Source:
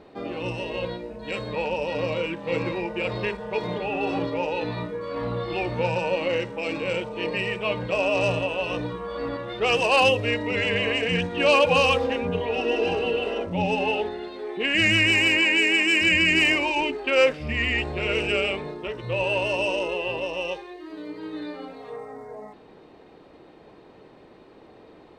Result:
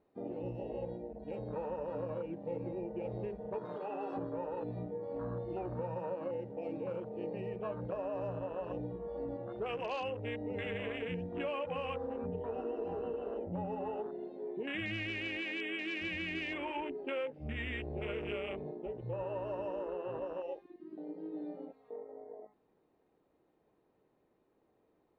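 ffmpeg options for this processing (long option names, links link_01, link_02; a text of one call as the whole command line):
ffmpeg -i in.wav -filter_complex "[0:a]asettb=1/sr,asplit=3[link_01][link_02][link_03];[link_01]atrim=end=3.654[link_04];[link_02]atrim=start=3.65:end=4.17,asetpts=PTS-STARTPTS,afade=type=in:duration=0.004:curve=qsin,afade=type=out:start_time=0.516:duration=0.004:curve=qsin,aemphasis=mode=production:type=riaa[link_05];[link_03]atrim=start=4.166[link_06];[link_04][link_05]acrossfade=duration=0.004:curve1=hsin:curve2=qsin[link_07];[link_07][link_06]acrossfade=duration=0.004:curve1=qsin:curve2=hsin,lowpass=frequency=1700:poles=1,afwtdn=0.0355,acompressor=threshold=-28dB:ratio=6,volume=-7dB" out.wav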